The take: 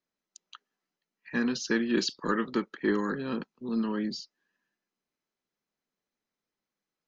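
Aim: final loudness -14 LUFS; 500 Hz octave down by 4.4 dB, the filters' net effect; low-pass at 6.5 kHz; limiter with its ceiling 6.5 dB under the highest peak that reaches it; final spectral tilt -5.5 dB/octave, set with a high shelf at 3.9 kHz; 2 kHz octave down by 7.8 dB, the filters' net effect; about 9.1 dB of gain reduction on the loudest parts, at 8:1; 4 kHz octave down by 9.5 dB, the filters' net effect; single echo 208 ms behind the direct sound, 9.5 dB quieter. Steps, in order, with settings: low-pass 6.5 kHz; peaking EQ 500 Hz -6 dB; peaking EQ 2 kHz -7.5 dB; treble shelf 3.9 kHz -6 dB; peaking EQ 4 kHz -5 dB; compression 8:1, threshold -34 dBFS; peak limiter -31 dBFS; delay 208 ms -9.5 dB; trim +27 dB

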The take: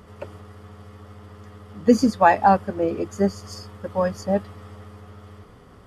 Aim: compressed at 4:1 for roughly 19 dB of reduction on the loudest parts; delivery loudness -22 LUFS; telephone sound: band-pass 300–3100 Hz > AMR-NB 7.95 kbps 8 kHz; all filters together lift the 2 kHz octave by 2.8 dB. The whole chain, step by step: peaking EQ 2 kHz +4 dB; compression 4:1, threshold -33 dBFS; band-pass 300–3100 Hz; trim +18.5 dB; AMR-NB 7.95 kbps 8 kHz

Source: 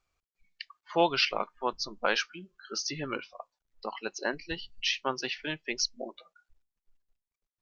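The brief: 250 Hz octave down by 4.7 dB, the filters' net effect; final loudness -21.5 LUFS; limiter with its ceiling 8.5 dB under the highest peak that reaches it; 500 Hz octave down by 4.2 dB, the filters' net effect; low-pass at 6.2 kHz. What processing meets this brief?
low-pass 6.2 kHz; peaking EQ 250 Hz -5 dB; peaking EQ 500 Hz -4 dB; trim +14 dB; peak limiter -6.5 dBFS

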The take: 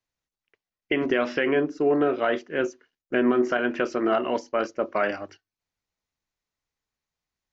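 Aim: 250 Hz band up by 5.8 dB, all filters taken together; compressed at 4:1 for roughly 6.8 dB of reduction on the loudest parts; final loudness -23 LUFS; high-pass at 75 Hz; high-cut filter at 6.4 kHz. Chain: high-pass 75 Hz; low-pass 6.4 kHz; peaking EQ 250 Hz +7 dB; compression 4:1, threshold -20 dBFS; trim +3 dB

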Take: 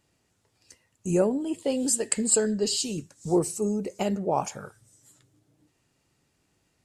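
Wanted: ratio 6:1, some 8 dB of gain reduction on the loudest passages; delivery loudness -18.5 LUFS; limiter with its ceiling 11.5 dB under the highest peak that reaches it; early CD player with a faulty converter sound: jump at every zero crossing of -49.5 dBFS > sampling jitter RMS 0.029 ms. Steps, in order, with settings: compression 6:1, threshold -26 dBFS; peak limiter -22.5 dBFS; jump at every zero crossing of -49.5 dBFS; sampling jitter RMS 0.029 ms; trim +14 dB

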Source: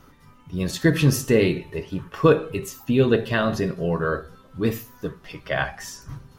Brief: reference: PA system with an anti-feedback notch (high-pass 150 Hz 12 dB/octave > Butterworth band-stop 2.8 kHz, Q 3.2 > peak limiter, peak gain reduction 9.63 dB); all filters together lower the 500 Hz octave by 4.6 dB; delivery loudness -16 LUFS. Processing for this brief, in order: high-pass 150 Hz 12 dB/octave; Butterworth band-stop 2.8 kHz, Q 3.2; peaking EQ 500 Hz -5.5 dB; trim +13.5 dB; peak limiter -2.5 dBFS

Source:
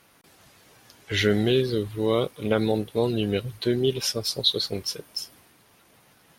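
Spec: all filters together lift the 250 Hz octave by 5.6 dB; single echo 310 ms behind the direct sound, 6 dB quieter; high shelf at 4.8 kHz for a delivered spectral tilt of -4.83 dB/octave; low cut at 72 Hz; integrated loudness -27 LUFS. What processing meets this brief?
high-pass 72 Hz; peaking EQ 250 Hz +7.5 dB; treble shelf 4.8 kHz +5 dB; delay 310 ms -6 dB; trim -6 dB

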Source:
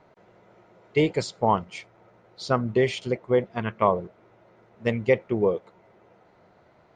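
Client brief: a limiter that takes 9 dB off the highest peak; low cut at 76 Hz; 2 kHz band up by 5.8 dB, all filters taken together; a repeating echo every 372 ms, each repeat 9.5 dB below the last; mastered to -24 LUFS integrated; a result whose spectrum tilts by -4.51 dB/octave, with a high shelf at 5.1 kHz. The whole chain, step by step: high-pass 76 Hz; peaking EQ 2 kHz +7 dB; treble shelf 5.1 kHz -3.5 dB; peak limiter -14 dBFS; feedback delay 372 ms, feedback 33%, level -9.5 dB; trim +4.5 dB

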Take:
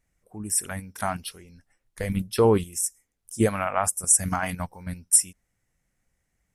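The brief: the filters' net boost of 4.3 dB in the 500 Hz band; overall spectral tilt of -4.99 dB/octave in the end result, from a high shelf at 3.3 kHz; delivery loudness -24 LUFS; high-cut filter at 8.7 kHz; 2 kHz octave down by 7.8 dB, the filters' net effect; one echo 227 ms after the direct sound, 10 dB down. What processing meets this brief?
low-pass 8.7 kHz; peaking EQ 500 Hz +5.5 dB; peaking EQ 2 kHz -9 dB; treble shelf 3.3 kHz -8 dB; delay 227 ms -10 dB; trim +1 dB

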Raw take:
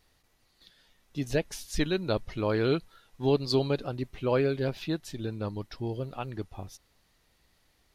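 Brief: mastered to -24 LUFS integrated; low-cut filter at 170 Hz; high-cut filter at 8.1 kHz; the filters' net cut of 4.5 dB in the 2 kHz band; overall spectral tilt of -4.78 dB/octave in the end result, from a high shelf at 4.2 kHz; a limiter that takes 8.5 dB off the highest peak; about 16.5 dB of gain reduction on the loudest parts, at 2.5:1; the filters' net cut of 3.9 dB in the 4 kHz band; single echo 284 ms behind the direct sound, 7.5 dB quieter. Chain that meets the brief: high-pass 170 Hz; low-pass 8.1 kHz; peaking EQ 2 kHz -6 dB; peaking EQ 4 kHz -7 dB; treble shelf 4.2 kHz +7 dB; compression 2.5:1, threshold -47 dBFS; peak limiter -37.5 dBFS; delay 284 ms -7.5 dB; trim +25 dB

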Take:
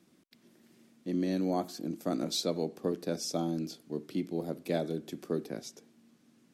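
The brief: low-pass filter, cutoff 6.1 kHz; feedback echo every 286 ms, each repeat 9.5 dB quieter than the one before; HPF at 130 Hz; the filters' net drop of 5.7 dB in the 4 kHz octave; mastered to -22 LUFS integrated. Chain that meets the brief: high-pass 130 Hz; low-pass 6.1 kHz; peaking EQ 4 kHz -5.5 dB; feedback delay 286 ms, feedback 33%, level -9.5 dB; trim +13 dB

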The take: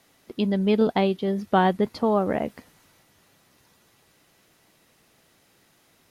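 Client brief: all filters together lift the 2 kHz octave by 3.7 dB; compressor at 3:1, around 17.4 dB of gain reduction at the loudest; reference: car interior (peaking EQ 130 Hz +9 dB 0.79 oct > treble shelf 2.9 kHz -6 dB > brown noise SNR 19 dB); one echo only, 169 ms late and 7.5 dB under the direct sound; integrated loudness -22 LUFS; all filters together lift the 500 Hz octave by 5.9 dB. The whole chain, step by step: peaking EQ 500 Hz +7 dB; peaking EQ 2 kHz +6.5 dB; compression 3:1, threshold -37 dBFS; peaking EQ 130 Hz +9 dB 0.79 oct; treble shelf 2.9 kHz -6 dB; delay 169 ms -7.5 dB; brown noise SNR 19 dB; trim +12.5 dB

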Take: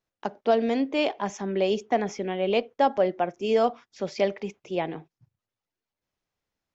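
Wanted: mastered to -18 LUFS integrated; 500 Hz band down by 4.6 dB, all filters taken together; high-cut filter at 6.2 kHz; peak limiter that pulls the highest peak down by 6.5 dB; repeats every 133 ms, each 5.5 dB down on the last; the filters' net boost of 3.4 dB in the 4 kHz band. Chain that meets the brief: low-pass 6.2 kHz; peaking EQ 500 Hz -6 dB; peaking EQ 4 kHz +5.5 dB; peak limiter -18 dBFS; feedback delay 133 ms, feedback 53%, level -5.5 dB; trim +11.5 dB

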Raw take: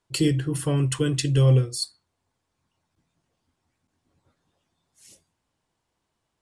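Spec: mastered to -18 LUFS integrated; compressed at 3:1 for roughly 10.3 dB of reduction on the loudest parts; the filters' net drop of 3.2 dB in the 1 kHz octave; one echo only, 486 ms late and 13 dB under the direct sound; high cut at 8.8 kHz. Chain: low-pass 8.8 kHz; peaking EQ 1 kHz -4 dB; compression 3:1, threshold -28 dBFS; delay 486 ms -13 dB; trim +12.5 dB

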